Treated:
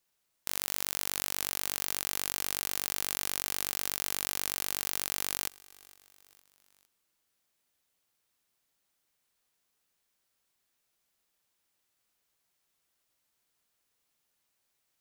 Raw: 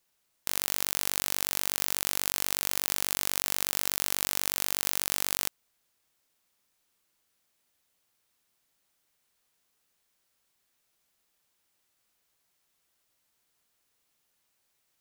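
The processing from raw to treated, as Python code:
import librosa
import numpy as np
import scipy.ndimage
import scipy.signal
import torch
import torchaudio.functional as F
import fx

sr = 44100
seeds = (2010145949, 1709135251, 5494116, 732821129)

y = fx.echo_feedback(x, sr, ms=459, feedback_pct=51, wet_db=-23.0)
y = y * librosa.db_to_amplitude(-3.5)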